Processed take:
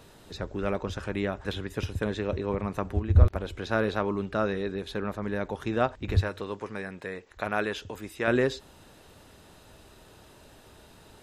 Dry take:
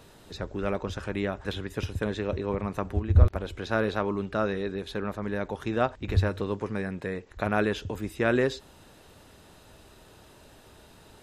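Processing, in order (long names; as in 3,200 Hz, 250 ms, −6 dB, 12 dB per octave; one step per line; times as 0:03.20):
0:06.21–0:08.28: low-shelf EQ 360 Hz −10 dB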